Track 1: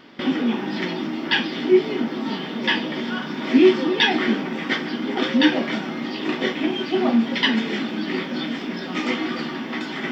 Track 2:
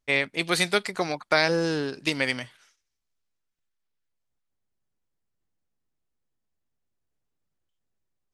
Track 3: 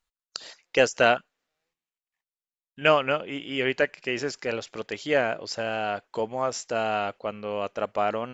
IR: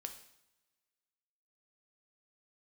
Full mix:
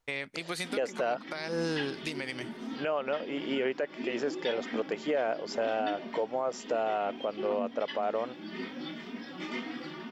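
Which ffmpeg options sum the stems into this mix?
-filter_complex "[0:a]asplit=2[a][b];[b]adelay=3,afreqshift=2[c];[a][c]amix=inputs=2:normalize=1,adelay=450,volume=-10dB[d];[1:a]acompressor=threshold=-24dB:ratio=6,volume=0dB[e];[2:a]highpass=150,equalizer=f=570:w=0.43:g=13,volume=-5.5dB[f];[d][e][f]amix=inputs=3:normalize=0,alimiter=limit=-21dB:level=0:latency=1:release=376"

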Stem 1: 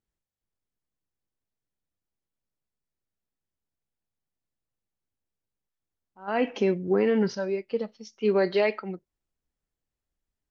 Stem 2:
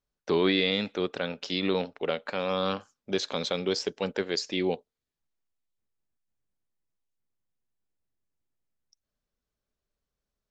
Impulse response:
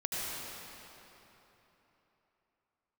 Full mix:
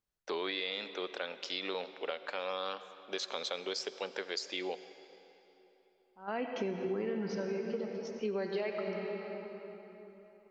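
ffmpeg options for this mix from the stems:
-filter_complex "[0:a]volume=-8.5dB,asplit=2[a][b];[b]volume=-6.5dB[c];[1:a]highpass=510,volume=-4.5dB,asplit=2[d][e];[e]volume=-19.5dB[f];[2:a]atrim=start_sample=2205[g];[c][f]amix=inputs=2:normalize=0[h];[h][g]afir=irnorm=-1:irlink=0[i];[a][d][i]amix=inputs=3:normalize=0,acompressor=threshold=-32dB:ratio=6"

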